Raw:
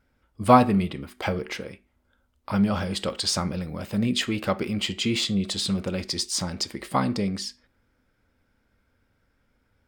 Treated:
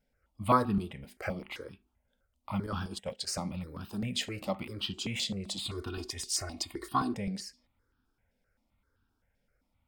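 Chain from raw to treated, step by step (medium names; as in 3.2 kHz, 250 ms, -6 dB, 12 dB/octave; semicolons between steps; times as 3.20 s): 2.66–3.39 s: gate -28 dBFS, range -13 dB; 5.65–7.14 s: comb 2.8 ms, depth 96%; stepped phaser 7.7 Hz 320–2100 Hz; trim -5.5 dB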